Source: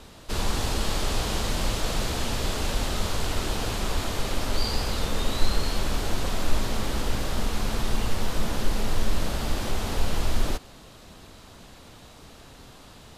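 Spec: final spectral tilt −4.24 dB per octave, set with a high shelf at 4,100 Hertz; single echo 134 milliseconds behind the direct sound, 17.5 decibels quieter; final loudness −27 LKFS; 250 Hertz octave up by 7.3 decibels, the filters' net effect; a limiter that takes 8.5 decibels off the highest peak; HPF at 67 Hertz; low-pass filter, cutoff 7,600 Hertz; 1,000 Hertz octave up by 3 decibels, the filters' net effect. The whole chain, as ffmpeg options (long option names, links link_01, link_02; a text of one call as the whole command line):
ffmpeg -i in.wav -af "highpass=67,lowpass=7600,equalizer=frequency=250:width_type=o:gain=9,equalizer=frequency=1000:width_type=o:gain=3,highshelf=frequency=4100:gain=4,alimiter=limit=-22dB:level=0:latency=1,aecho=1:1:134:0.133,volume=4dB" out.wav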